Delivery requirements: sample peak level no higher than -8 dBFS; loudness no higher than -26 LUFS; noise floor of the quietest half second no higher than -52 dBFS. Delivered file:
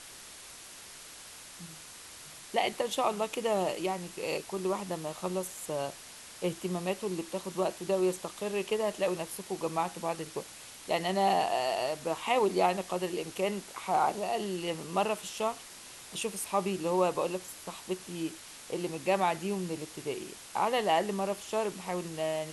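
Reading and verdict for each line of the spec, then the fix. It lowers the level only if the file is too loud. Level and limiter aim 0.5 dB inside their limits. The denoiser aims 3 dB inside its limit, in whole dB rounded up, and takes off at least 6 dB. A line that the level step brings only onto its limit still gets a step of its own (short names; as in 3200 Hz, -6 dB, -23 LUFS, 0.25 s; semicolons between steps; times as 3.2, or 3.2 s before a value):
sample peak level -14.0 dBFS: OK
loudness -32.5 LUFS: OK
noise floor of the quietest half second -49 dBFS: fail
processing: denoiser 6 dB, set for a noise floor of -49 dBFS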